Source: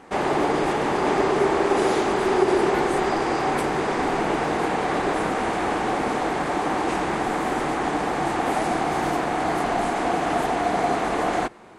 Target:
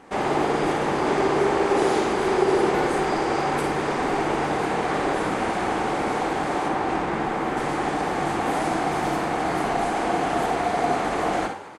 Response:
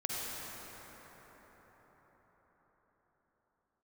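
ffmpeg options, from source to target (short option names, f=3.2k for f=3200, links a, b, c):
-filter_complex "[0:a]asettb=1/sr,asplit=3[a][b][c];[a]atrim=end=6.684[d];[b]atrim=start=6.68:end=7.57,asetpts=PTS-STARTPTS,afade=t=in:d=0.004:c=qsin,afade=t=out:st=0.886:d=0.004:c=qsin,highshelf=f=5.5k:g=-11.5[e];[c]atrim=start=7.566[f];[d][e]acrossfade=d=0.004:c1=hsin:c2=qsin[g];[g][f]acrossfade=d=0.004:c1=qsin:c2=hsin,asplit=8[h][i][j][k][l][m][n][o];[i]adelay=107,afreqshift=49,volume=-14.5dB[p];[j]adelay=214,afreqshift=98,volume=-18.2dB[q];[k]adelay=321,afreqshift=147,volume=-22dB[r];[l]adelay=428,afreqshift=196,volume=-25.7dB[s];[m]adelay=535,afreqshift=245,volume=-29.5dB[t];[n]adelay=642,afreqshift=294,volume=-33.2dB[u];[o]adelay=749,afreqshift=343,volume=-37dB[v];[h][p][q][r][s][t][u][v]amix=inputs=8:normalize=0[w];[1:a]atrim=start_sample=2205,atrim=end_sample=3087[x];[w][x]afir=irnorm=-1:irlink=0"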